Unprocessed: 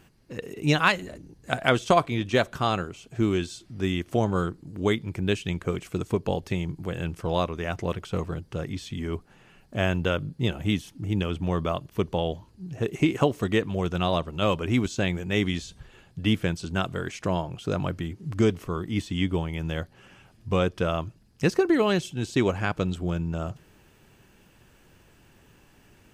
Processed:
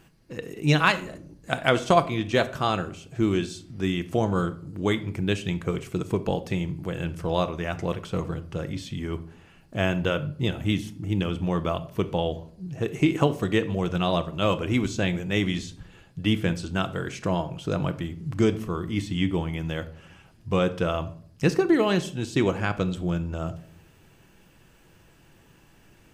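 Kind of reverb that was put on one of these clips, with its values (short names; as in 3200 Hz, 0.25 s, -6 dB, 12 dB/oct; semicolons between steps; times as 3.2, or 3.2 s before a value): shoebox room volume 740 m³, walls furnished, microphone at 0.69 m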